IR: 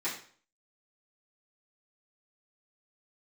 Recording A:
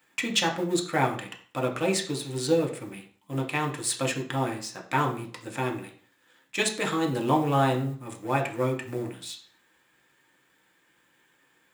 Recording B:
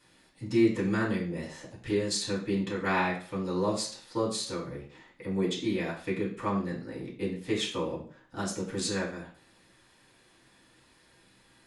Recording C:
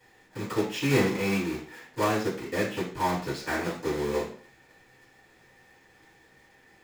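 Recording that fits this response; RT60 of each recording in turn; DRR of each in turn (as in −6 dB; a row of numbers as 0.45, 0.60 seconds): C; 0.50, 0.50, 0.50 seconds; 0.5, −7.5, −12.0 decibels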